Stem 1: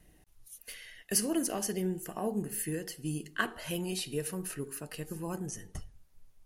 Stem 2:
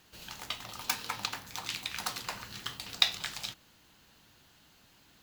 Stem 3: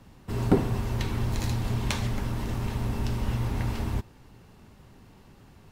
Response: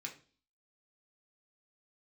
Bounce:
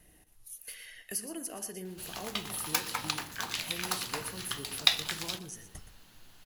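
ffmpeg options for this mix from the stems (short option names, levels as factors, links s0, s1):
-filter_complex "[0:a]lowshelf=f=460:g=-5,acompressor=threshold=0.00316:ratio=2,volume=1.41,asplit=2[s0][s1];[s1]volume=0.251[s2];[1:a]adelay=1850,volume=1.19,asplit=2[s3][s4];[s4]volume=0.106[s5];[s2][s5]amix=inputs=2:normalize=0,aecho=0:1:120:1[s6];[s0][s3][s6]amix=inputs=3:normalize=0,equalizer=f=11000:t=o:w=0.28:g=6.5"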